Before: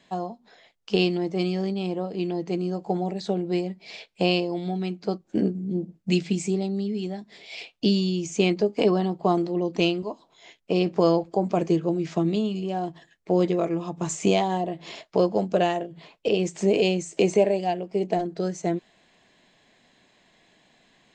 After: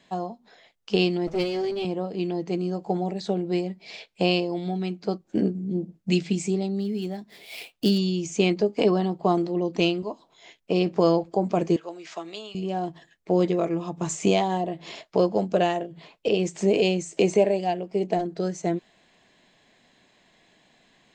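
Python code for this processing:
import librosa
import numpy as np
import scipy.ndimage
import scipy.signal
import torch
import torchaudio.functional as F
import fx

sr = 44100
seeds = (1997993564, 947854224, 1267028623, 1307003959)

y = fx.lower_of_two(x, sr, delay_ms=7.8, at=(1.27, 1.85))
y = fx.dead_time(y, sr, dead_ms=0.052, at=(6.78, 7.97), fade=0.02)
y = fx.highpass(y, sr, hz=800.0, slope=12, at=(11.76, 12.55))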